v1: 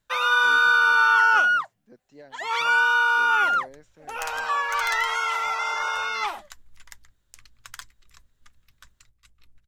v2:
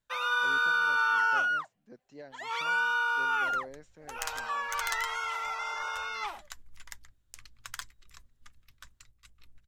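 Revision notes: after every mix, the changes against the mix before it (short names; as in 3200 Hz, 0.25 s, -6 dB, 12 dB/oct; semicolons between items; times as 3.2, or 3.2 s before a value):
first sound -8.5 dB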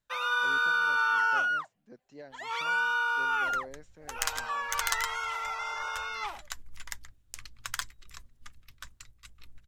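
second sound +6.0 dB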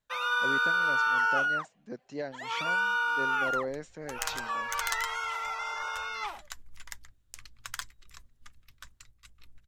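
speech +11.0 dB; second sound -3.5 dB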